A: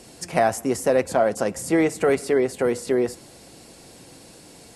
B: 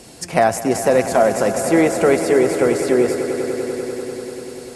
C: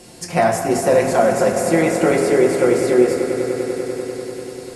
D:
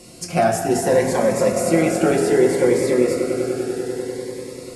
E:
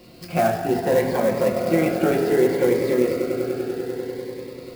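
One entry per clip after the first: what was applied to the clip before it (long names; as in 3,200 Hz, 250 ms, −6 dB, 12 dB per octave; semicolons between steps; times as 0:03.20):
echo that builds up and dies away 98 ms, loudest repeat 5, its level −14 dB; level +4.5 dB
convolution reverb RT60 1.5 s, pre-delay 6 ms, DRR −0.5 dB; level −3 dB
phaser whose notches keep moving one way rising 0.64 Hz
downsampling to 11,025 Hz; converter with an unsteady clock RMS 0.024 ms; level −2.5 dB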